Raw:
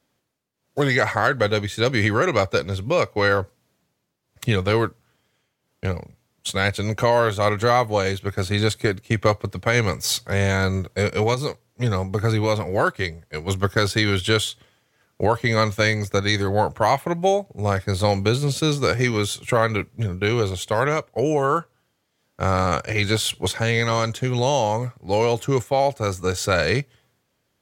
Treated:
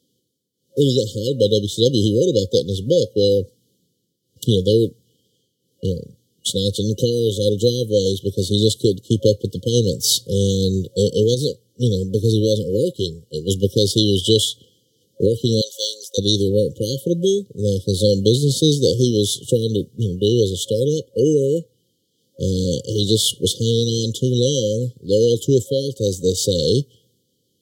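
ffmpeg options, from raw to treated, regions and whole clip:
ffmpeg -i in.wav -filter_complex "[0:a]asettb=1/sr,asplit=3[link_01][link_02][link_03];[link_01]atrim=end=15.614[link_04];[link_02]atrim=start=15.61:end=16.18,asetpts=PTS-STARTPTS,afade=type=in:duration=0.004:curve=qsin,afade=type=out:start_time=0.566:duration=0.004:curve=qsin,deesser=0.45,highpass=frequency=730:width=0.5412,highpass=frequency=730:width=1.3066,agate=range=-33dB:threshold=-45dB:ratio=3:release=100:detection=peak[link_05];[link_03]atrim=start=16.176[link_06];[link_04][link_05]acrossfade=duration=0.004:curve1=hsin:curve2=qsin[link_07];[link_07][link_06]acrossfade=duration=0.004:curve1=qsin:curve2=hsin,highpass=110,afftfilt=real='re*(1-between(b*sr/4096,540,2900))':imag='im*(1-between(b*sr/4096,540,2900))':win_size=4096:overlap=0.75,volume=6dB" out.wav

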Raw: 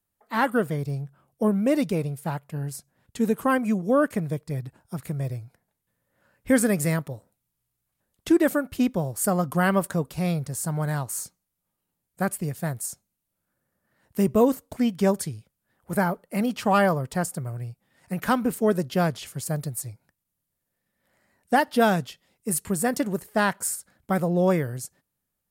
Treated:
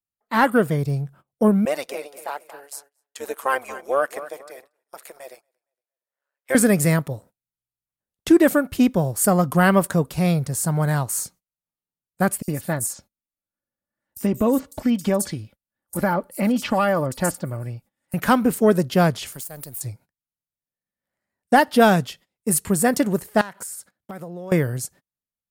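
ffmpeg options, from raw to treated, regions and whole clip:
ffmpeg -i in.wav -filter_complex "[0:a]asettb=1/sr,asplit=3[link_01][link_02][link_03];[link_01]atrim=end=1.654[link_04];[link_02]atrim=start=1.65:end=6.55,asetpts=PTS-STARTPTS,afade=type=in:duration=0.004:curve=qsin,afade=type=out:start_time=4.896:duration=0.004:curve=qsin,highpass=frequency=520:width=0.5412,highpass=frequency=520:width=1.3066,tremolo=f=140:d=0.71,aecho=1:1:232|464|696:0.178|0.0551|0.0171,atrim=end_sample=216090[link_05];[link_03]atrim=start=6.546[link_06];[link_04][link_05]acrossfade=duration=0.004:curve1=hsin:curve2=qsin[link_07];[link_07][link_06]acrossfade=duration=0.004:curve1=qsin:curve2=hsin,asettb=1/sr,asplit=3[link_08][link_09][link_10];[link_08]atrim=end=12.424[link_11];[link_09]atrim=start=12.42:end=18.14,asetpts=PTS-STARTPTS,afade=type=in:duration=0.004:curve=qsin,afade=type=out:start_time=5.716:duration=0.004:curve=qsin,aecho=1:1:3.5:0.44,atrim=end_sample=252252,acompressor=threshold=-21dB:ratio=5:attack=3.2:release=140:knee=1:detection=peak,acrossover=split=5300[link_12][link_13];[link_12]adelay=60[link_14];[link_14][link_13]amix=inputs=2:normalize=0,atrim=end_sample=252252[link_15];[link_10]atrim=start=18.136[link_16];[link_11][link_15]acrossfade=duration=0.004:curve1=hsin:curve2=qsin[link_17];[link_17][link_16]acrossfade=duration=0.004:curve1=qsin:curve2=hsin,asettb=1/sr,asplit=3[link_18][link_19][link_20];[link_18]atrim=end=19.324[link_21];[link_19]atrim=start=19.32:end=19.81,asetpts=PTS-STARTPTS,afade=type=in:duration=0.004:curve=qsin,afade=type=out:start_time=0.486:duration=0.004:curve=qsin,aeval=exprs='if(lt(val(0),0),0.447*val(0),val(0))':channel_layout=same,aemphasis=mode=production:type=bsi,acompressor=threshold=-37dB:ratio=6:attack=3.2:release=140:knee=1:detection=peak[link_22];[link_20]atrim=start=19.806[link_23];[link_21][link_22]acrossfade=duration=0.004:curve1=hsin:curve2=qsin[link_24];[link_24][link_23]acrossfade=duration=0.004:curve1=qsin:curve2=hsin,asettb=1/sr,asplit=3[link_25][link_26][link_27];[link_25]atrim=end=23.414[link_28];[link_26]atrim=start=23.41:end=24.52,asetpts=PTS-STARTPTS,afade=type=in:duration=0.004:curve=qsin,afade=type=out:start_time=1.106:duration=0.004:curve=qsin,acompressor=threshold=-35dB:ratio=16:attack=3.2:release=140:knee=1:detection=peak,highpass=frequency=180:poles=1,aeval=exprs='0.0316*(abs(mod(val(0)/0.0316+3,4)-2)-1)':channel_layout=same[link_29];[link_27]atrim=start=24.516[link_30];[link_28][link_29]acrossfade=duration=0.004:curve1=hsin:curve2=qsin[link_31];[link_31][link_30]acrossfade=duration=0.004:curve1=qsin:curve2=hsin,agate=range=-22dB:threshold=-51dB:ratio=16:detection=peak,acontrast=49" out.wav

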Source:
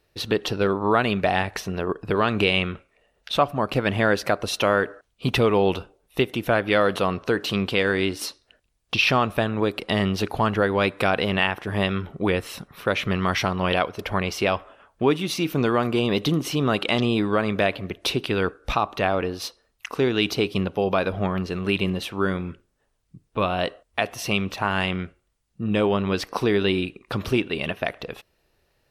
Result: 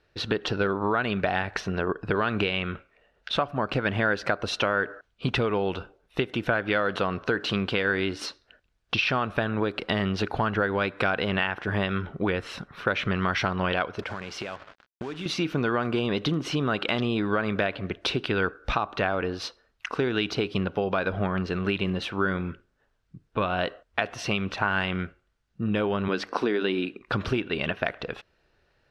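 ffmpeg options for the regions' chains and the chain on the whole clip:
ffmpeg -i in.wav -filter_complex "[0:a]asettb=1/sr,asplit=3[link_01][link_02][link_03];[link_01]atrim=end=14.024[link_04];[link_02]atrim=start=14.02:end=15.26,asetpts=PTS-STARTPTS,afade=type=in:duration=0.004:curve=qsin,afade=type=out:start_time=1.236:duration=0.004:curve=qsin,highpass=93,acompressor=threshold=-30dB:ratio=12:attack=3.2:release=140:knee=1:detection=peak,acrusher=bits=6:mix=0:aa=0.5[link_05];[link_03]atrim=start=15.256[link_06];[link_04][link_05]acrossfade=duration=0.004:curve1=hsin:curve2=qsin[link_07];[link_07][link_06]acrossfade=duration=0.004:curve1=qsin:curve2=hsin,asettb=1/sr,asplit=3[link_08][link_09][link_10];[link_08]atrim=end=26.084[link_11];[link_09]atrim=start=26.08:end=27,asetpts=PTS-STARTPTS,afade=type=in:duration=0.004:curve=qsin,afade=type=out:start_time=0.916:duration=0.004:curve=qsin,lowshelf=frequency=160:width_type=q:width=1.5:gain=-12.5,bandreject=frequency=50:width_type=h:width=6,bandreject=frequency=100:width_type=h:width=6,bandreject=frequency=150:width_type=h:width=6,bandreject=frequency=200:width_type=h:width=6[link_12];[link_10]atrim=start=26.996[link_13];[link_11][link_12]acrossfade=duration=0.004:curve1=hsin:curve2=qsin[link_14];[link_14][link_13]acrossfade=duration=0.004:curve1=qsin:curve2=hsin,acompressor=threshold=-22dB:ratio=6,lowpass=4900,equalizer=frequency=1500:width=4.1:gain=7.5" out.wav

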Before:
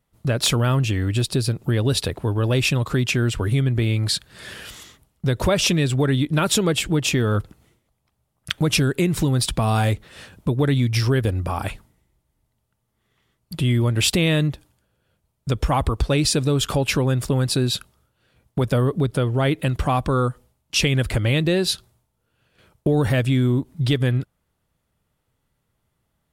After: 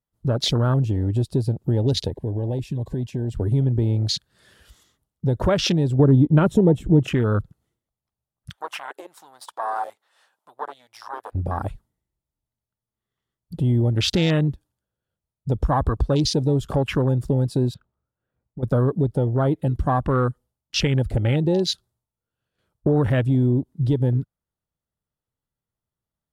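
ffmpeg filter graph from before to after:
ffmpeg -i in.wav -filter_complex "[0:a]asettb=1/sr,asplit=3[link_01][link_02][link_03];[link_01]atrim=end=2.084[link_04];[link_02]atrim=start=2.08:end=3.35,asetpts=PTS-STARTPTS,afade=type=in:duration=0.004:curve=qsin,afade=type=out:start_time=1.266:duration=0.004:curve=qsin,acompressor=threshold=-22dB:ratio=4:attack=3.2:release=140:knee=1:detection=peak,asuperstop=centerf=1300:order=20:qfactor=3.6[link_05];[link_03]atrim=start=3.346[link_06];[link_04][link_05]acrossfade=duration=0.004:curve1=hsin:curve2=qsin[link_07];[link_07][link_06]acrossfade=duration=0.004:curve1=qsin:curve2=hsin,asettb=1/sr,asplit=3[link_08][link_09][link_10];[link_08]atrim=end=5.994[link_11];[link_09]atrim=start=5.99:end=7.08,asetpts=PTS-STARTPTS,afade=type=in:duration=0.004:curve=qsin,afade=type=out:start_time=1.086:duration=0.004:curve=qsin,tiltshelf=frequency=930:gain=6,bandreject=frequency=4700:width=5.4[link_12];[link_10]atrim=start=7.076[link_13];[link_11][link_12]acrossfade=duration=0.004:curve1=hsin:curve2=qsin[link_14];[link_14][link_13]acrossfade=duration=0.004:curve1=qsin:curve2=hsin,asettb=1/sr,asplit=3[link_15][link_16][link_17];[link_15]atrim=end=8.524[link_18];[link_16]atrim=start=8.52:end=11.35,asetpts=PTS-STARTPTS,afade=type=in:duration=0.004:curve=qsin,afade=type=out:start_time=2.826:duration=0.004:curve=qsin,aeval=exprs='(tanh(6.31*val(0)+0.55)-tanh(0.55))/6.31':channel_layout=same,highpass=frequency=850:width_type=q:width=2.2[link_19];[link_17]atrim=start=11.346[link_20];[link_18][link_19]acrossfade=duration=0.004:curve1=hsin:curve2=qsin[link_21];[link_21][link_20]acrossfade=duration=0.004:curve1=qsin:curve2=hsin,asettb=1/sr,asplit=3[link_22][link_23][link_24];[link_22]atrim=end=17.744[link_25];[link_23]atrim=start=17.74:end=18.63,asetpts=PTS-STARTPTS,afade=type=in:duration=0.004:curve=qsin,afade=type=out:start_time=0.886:duration=0.004:curve=qsin,lowpass=1600,acompressor=threshold=-36dB:ratio=2.5:attack=3.2:release=140:knee=1:detection=peak[link_26];[link_24]atrim=start=18.626[link_27];[link_25][link_26]acrossfade=duration=0.004:curve1=hsin:curve2=qsin[link_28];[link_28][link_27]acrossfade=duration=0.004:curve1=qsin:curve2=hsin,afwtdn=0.0501,equalizer=frequency=2400:width_type=o:width=0.49:gain=-6.5" out.wav

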